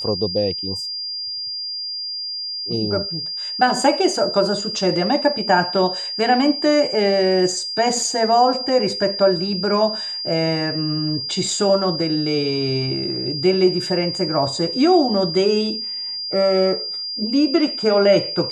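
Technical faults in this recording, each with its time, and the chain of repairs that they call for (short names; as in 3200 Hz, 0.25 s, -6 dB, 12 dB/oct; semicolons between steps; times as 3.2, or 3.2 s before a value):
tone 4800 Hz -25 dBFS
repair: notch 4800 Hz, Q 30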